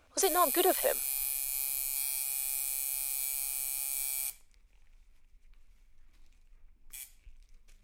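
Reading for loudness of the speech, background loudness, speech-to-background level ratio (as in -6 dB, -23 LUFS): -30.0 LUFS, -31.5 LUFS, 1.5 dB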